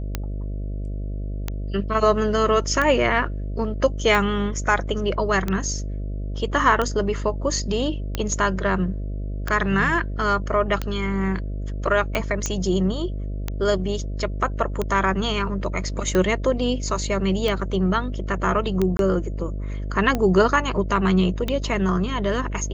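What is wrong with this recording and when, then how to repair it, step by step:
mains buzz 50 Hz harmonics 13 −28 dBFS
scratch tick 45 rpm −10 dBFS
0:12.46: click −9 dBFS
0:18.97–0:18.99: drop-out 22 ms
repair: click removal
hum removal 50 Hz, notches 13
repair the gap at 0:18.97, 22 ms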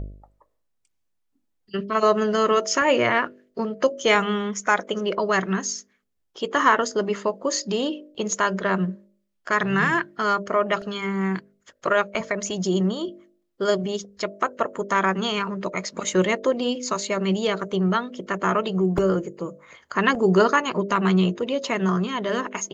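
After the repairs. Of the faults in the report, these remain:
none of them is left

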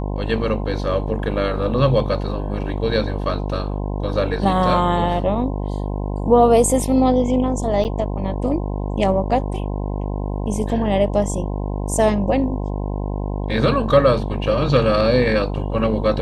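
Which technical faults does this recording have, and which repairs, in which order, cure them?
mains buzz 50 Hz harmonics 21 −24 dBFS
0:07.84–0:07.85: drop-out 8.9 ms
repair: hum removal 50 Hz, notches 21
repair the gap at 0:07.84, 8.9 ms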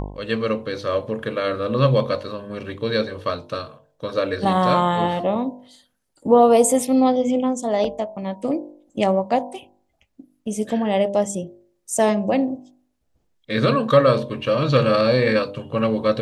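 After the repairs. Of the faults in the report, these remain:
none of them is left

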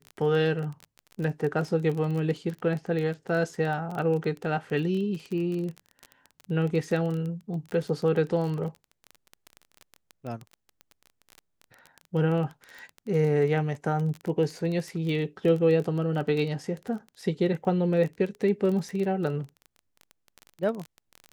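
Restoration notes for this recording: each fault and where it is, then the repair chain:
surface crackle 20 per second −31 dBFS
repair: click removal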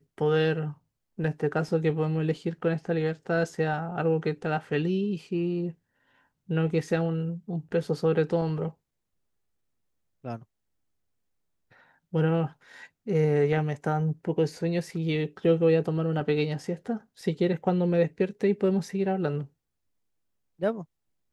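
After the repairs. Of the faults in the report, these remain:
none of them is left

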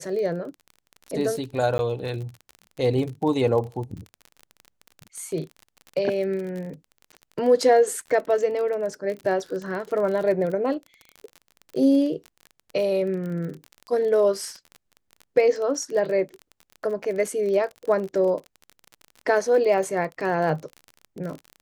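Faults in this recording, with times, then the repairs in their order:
surface crackle 33 per second −31 dBFS
0:01.78–0:01.79: drop-out 11 ms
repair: click removal
repair the gap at 0:01.78, 11 ms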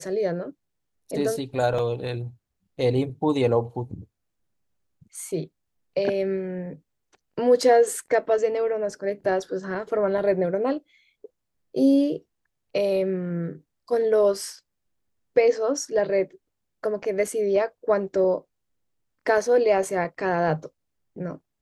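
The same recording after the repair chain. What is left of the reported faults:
none of them is left

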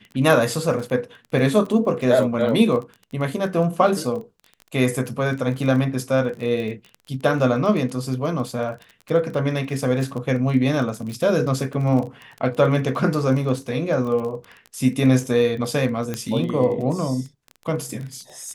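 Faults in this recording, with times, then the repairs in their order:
surface crackle 22 per second −28 dBFS
0:16.14: click −12 dBFS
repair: click removal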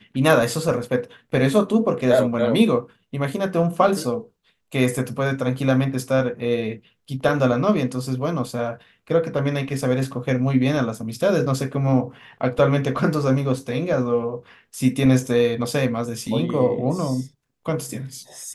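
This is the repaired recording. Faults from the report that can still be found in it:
none of them is left

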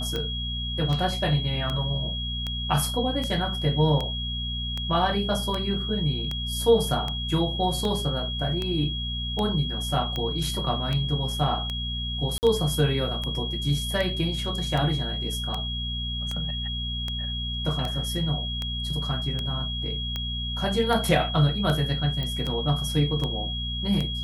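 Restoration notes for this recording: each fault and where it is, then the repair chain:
mains hum 60 Hz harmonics 4 −32 dBFS
scratch tick 78 rpm −16 dBFS
whistle 3,300 Hz −31 dBFS
0:12.38–0:12.43: drop-out 49 ms
0:22.23: click −18 dBFS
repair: click removal
hum removal 60 Hz, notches 4
notch filter 3,300 Hz, Q 30
repair the gap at 0:12.38, 49 ms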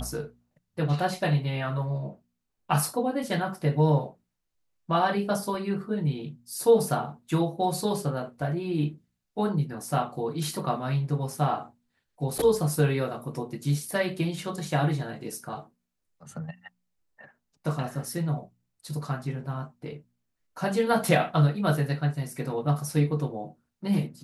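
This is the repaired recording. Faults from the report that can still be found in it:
0:22.23: click

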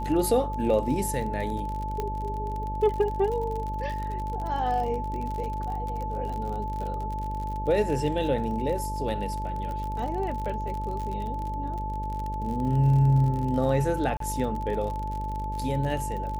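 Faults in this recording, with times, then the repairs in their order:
mains buzz 50 Hz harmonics 13 −33 dBFS
surface crackle 46 per second −32 dBFS
whistle 870 Hz −32 dBFS
0:02.00: click −17 dBFS
0:14.17–0:14.20: drop-out 33 ms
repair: click removal
hum removal 50 Hz, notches 13
notch filter 870 Hz, Q 30
repair the gap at 0:14.17, 33 ms

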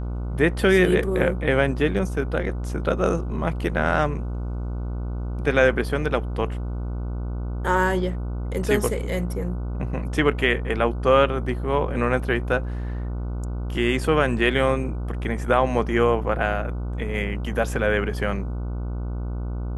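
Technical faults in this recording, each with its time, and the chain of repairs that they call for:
mains buzz 60 Hz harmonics 25 −28 dBFS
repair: hum removal 60 Hz, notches 25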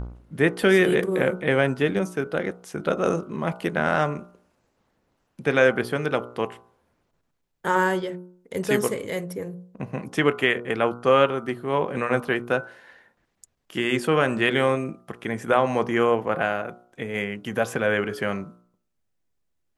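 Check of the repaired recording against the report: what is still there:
none of them is left

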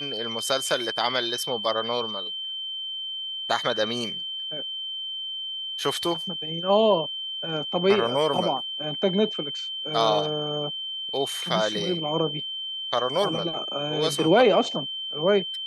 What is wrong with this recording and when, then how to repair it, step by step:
whistle 3,100 Hz −30 dBFS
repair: notch filter 3,100 Hz, Q 30

